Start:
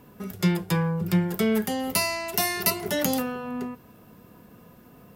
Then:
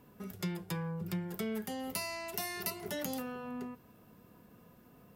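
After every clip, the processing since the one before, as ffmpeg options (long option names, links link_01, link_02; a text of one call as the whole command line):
ffmpeg -i in.wav -af "acompressor=threshold=-29dB:ratio=2,volume=-8.5dB" out.wav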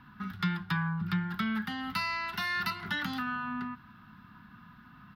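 ffmpeg -i in.wav -af "firequalizer=gain_entry='entry(230,0);entry(490,-28);entry(830,-1);entry(1400,12);entry(2300,0);entry(3800,4);entry(7200,-23);entry(13000,-18)':delay=0.05:min_phase=1,volume=6dB" out.wav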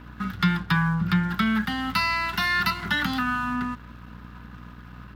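ffmpeg -i in.wav -af "aeval=exprs='val(0)+0.00398*(sin(2*PI*60*n/s)+sin(2*PI*2*60*n/s)/2+sin(2*PI*3*60*n/s)/3+sin(2*PI*4*60*n/s)/4+sin(2*PI*5*60*n/s)/5)':channel_layout=same,aeval=exprs='sgn(val(0))*max(abs(val(0))-0.00178,0)':channel_layout=same,volume=9dB" out.wav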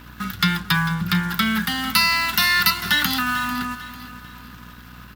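ffmpeg -i in.wav -af "crystalizer=i=5:c=0,aecho=1:1:446|892|1338|1784:0.188|0.0735|0.0287|0.0112" out.wav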